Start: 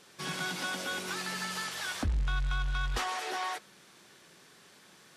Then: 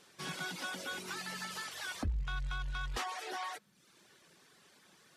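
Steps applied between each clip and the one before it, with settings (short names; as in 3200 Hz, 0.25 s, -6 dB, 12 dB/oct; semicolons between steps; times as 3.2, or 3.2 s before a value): reverb removal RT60 0.76 s; gain -4 dB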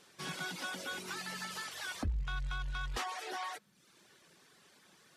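nothing audible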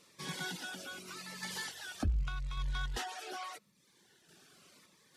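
random-step tremolo; cascading phaser falling 0.83 Hz; gain +3.5 dB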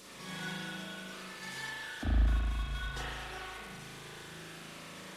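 delta modulation 64 kbps, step -42 dBFS; spring tank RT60 2 s, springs 37 ms, chirp 70 ms, DRR -7.5 dB; gain -5.5 dB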